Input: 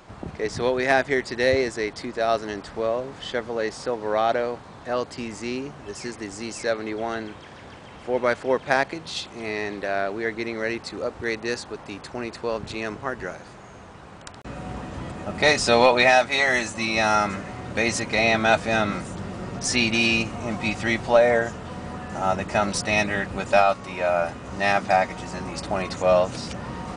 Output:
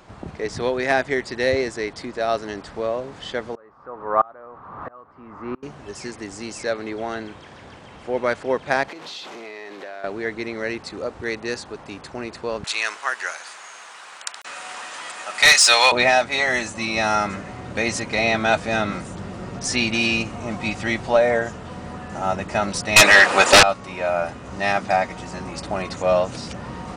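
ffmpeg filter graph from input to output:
-filter_complex "[0:a]asettb=1/sr,asplit=3[a][b][c];[a]atrim=end=3.554[d];[b]atrim=start=3.55:end=5.63,asetpts=PTS-STARTPTS,afade=t=in:d=0.004:c=qsin,afade=t=out:st=2.076:d=0.004:c=qsin,aeval=exprs='val(0)+0.5*0.0178*sgn(val(0))':c=same,lowpass=f=1.2k:t=q:w=5.4,aeval=exprs='val(0)*pow(10,-30*if(lt(mod(-1.5*n/s,1),2*abs(-1.5)/1000),1-mod(-1.5*n/s,1)/(2*abs(-1.5)/1000),(mod(-1.5*n/s,1)-2*abs(-1.5)/1000)/(1-2*abs(-1.5)/1000))/20)':c=same[e];[c]atrim=start=5.626[f];[d][e]acrossfade=d=0.004:c1=hsin:c2=qsin[g];[g][f]acrossfade=d=0.004:c1=qsin:c2=hsin,asettb=1/sr,asplit=3[h][i][j];[h]atrim=end=8.884[k];[i]atrim=start=8.88:end=10.04,asetpts=PTS-STARTPTS,afade=t=in:d=0.004:c=qsin,afade=t=out:st=1.156:d=0.004:c=qsin,aeval=exprs='val(0)+0.5*0.02*sgn(val(0))':c=same,acompressor=threshold=-31dB:ratio=6:attack=3.2:release=140:knee=1:detection=peak,highpass=330,lowpass=5.8k[l];[j]atrim=start=10.036[m];[k][l]acrossfade=d=0.004:c1=hsin:c2=qsin[n];[n][m]acrossfade=d=0.004:c1=qsin:c2=hsin,asettb=1/sr,asplit=3[o][p][q];[o]atrim=end=12.644[r];[p]atrim=start=12.64:end=15.92,asetpts=PTS-STARTPTS,afade=t=in:d=0.004:c=qsin,afade=t=out:st=3.276:d=0.004:c=qsin,highpass=1.3k,highshelf=f=7.7k:g=9.5,aeval=exprs='0.501*sin(PI/2*2*val(0)/0.501)':c=same[s];[q]atrim=start=15.916[t];[r][s]acrossfade=d=0.004:c1=hsin:c2=qsin[u];[u][t]acrossfade=d=0.004:c1=qsin:c2=hsin,asettb=1/sr,asplit=3[v][w][x];[v]atrim=end=22.964[y];[w]atrim=start=22.96:end=23.63,asetpts=PTS-STARTPTS,afade=t=in:d=0.004:c=qsin,afade=t=out:st=0.666:d=0.004:c=qsin,highpass=650,aeval=exprs='0.562*sin(PI/2*6.31*val(0)/0.562)':c=same[z];[x]atrim=start=23.626[aa];[y][z]acrossfade=d=0.004:c1=hsin:c2=qsin[ab];[ab][aa]acrossfade=d=0.004:c1=qsin:c2=hsin"

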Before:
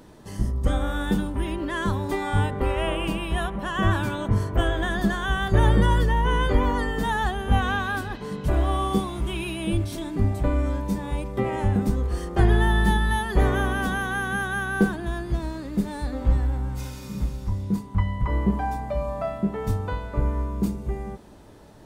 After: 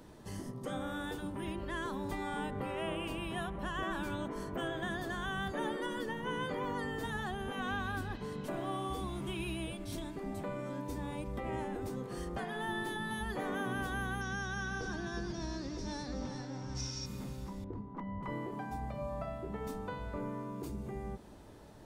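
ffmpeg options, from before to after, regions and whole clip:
-filter_complex "[0:a]asettb=1/sr,asplit=3[a][b][c];[a]atrim=end=14.214[d];[b]atrim=start=14.21:end=17.06,asetpts=PTS-STARTPTS,afade=t=in:d=0.004:c=qsin,afade=t=out:st=2.846:d=0.004:c=qsin,acompressor=threshold=-28dB:ratio=1.5:attack=3.2:release=140:knee=1:detection=peak,lowpass=f=5.6k:t=q:w=14,aecho=1:1:365:0.355,atrim=end_sample=125685[e];[c]atrim=start=17.056[f];[d][e]acrossfade=d=0.004:c1=hsin:c2=qsin[g];[g][f]acrossfade=d=0.004:c1=qsin:c2=hsin,asettb=1/sr,asplit=3[h][i][j];[h]atrim=end=17.644[k];[i]atrim=start=17.64:end=18.23,asetpts=PTS-STARTPTS,afade=t=in:d=0.004:c=qsin,afade=t=out:st=0.586:d=0.004:c=qsin,lowpass=1.2k,asoftclip=type=hard:threshold=-15.5dB[l];[j]atrim=start=18.226[m];[k][l]acrossfade=d=0.004:c1=hsin:c2=qsin[n];[n][m]acrossfade=d=0.004:c1=qsin:c2=hsin,acrossover=split=260[o][p];[p]acompressor=threshold=-40dB:ratio=1.5[q];[o][q]amix=inputs=2:normalize=0,afftfilt=real='re*lt(hypot(re,im),0.251)':imag='im*lt(hypot(re,im),0.251)':win_size=1024:overlap=0.75,volume=-5.5dB"

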